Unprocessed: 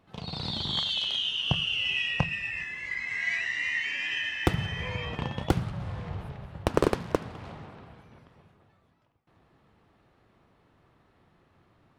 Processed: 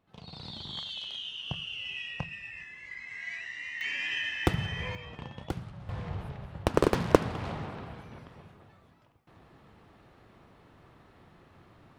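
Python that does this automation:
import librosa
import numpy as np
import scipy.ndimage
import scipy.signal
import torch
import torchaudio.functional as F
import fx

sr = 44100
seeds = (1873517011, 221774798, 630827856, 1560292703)

y = fx.gain(x, sr, db=fx.steps((0.0, -9.5), (3.81, -1.5), (4.95, -10.0), (5.89, -0.5), (6.94, 6.5)))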